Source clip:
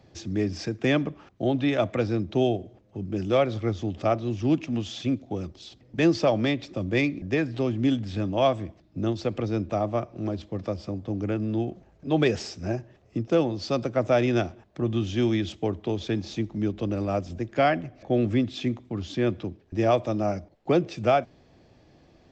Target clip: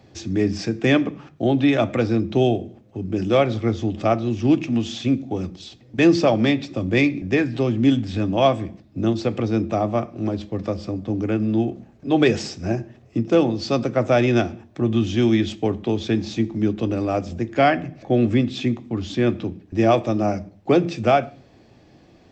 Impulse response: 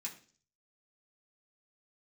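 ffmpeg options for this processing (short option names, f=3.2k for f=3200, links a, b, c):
-filter_complex "[0:a]asplit=2[a][b];[1:a]atrim=start_sample=2205,lowshelf=f=230:g=10.5[c];[b][c]afir=irnorm=-1:irlink=0,volume=-6dB[d];[a][d]amix=inputs=2:normalize=0,volume=3.5dB"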